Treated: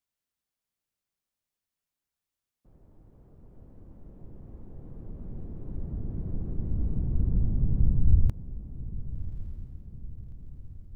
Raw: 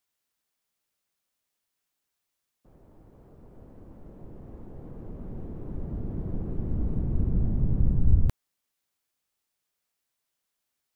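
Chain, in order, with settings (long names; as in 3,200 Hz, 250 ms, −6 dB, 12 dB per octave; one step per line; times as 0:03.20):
low-shelf EQ 220 Hz +9 dB
on a send: feedback delay with all-pass diffusion 1,165 ms, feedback 50%, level −13.5 dB
on the sum: level −8 dB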